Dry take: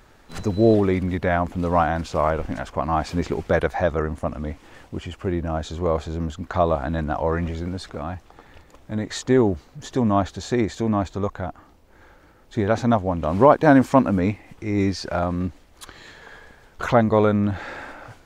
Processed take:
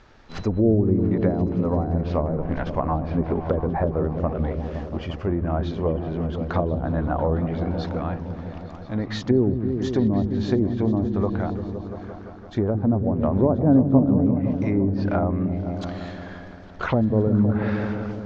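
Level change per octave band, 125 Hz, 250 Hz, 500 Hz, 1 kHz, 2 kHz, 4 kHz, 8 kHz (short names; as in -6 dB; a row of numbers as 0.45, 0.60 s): +3.0 dB, +1.5 dB, -3.0 dB, -7.0 dB, -7.5 dB, -5.0 dB, under -10 dB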